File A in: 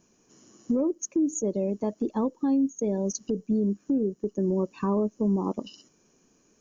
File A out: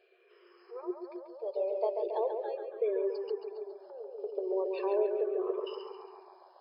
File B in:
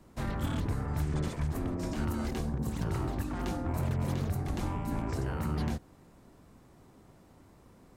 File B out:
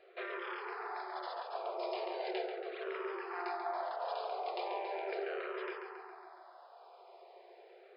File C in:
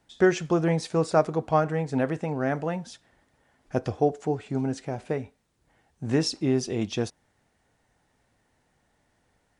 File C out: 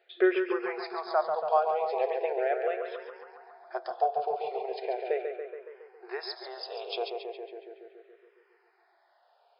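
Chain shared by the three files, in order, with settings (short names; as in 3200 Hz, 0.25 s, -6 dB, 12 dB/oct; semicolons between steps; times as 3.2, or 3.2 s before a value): small resonant body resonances 700/2400 Hz, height 9 dB; compressor 1.5:1, threshold -36 dBFS; FFT band-pass 350–5200 Hz; on a send: tape echo 0.139 s, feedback 76%, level -5 dB, low-pass 3100 Hz; on the sum: endless phaser -0.38 Hz; gain +4.5 dB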